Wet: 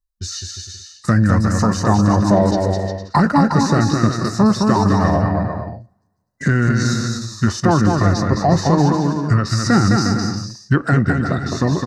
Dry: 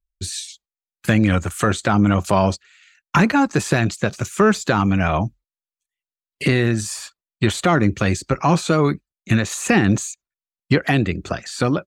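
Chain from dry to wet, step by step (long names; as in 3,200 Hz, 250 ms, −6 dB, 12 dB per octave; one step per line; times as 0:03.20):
Butterworth band-reject 3,300 Hz, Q 1.8
bouncing-ball delay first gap 210 ms, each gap 0.7×, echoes 5
coupled-rooms reverb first 0.4 s, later 1.7 s, from −22 dB, DRR 16 dB
formants moved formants −5 semitones
level +1.5 dB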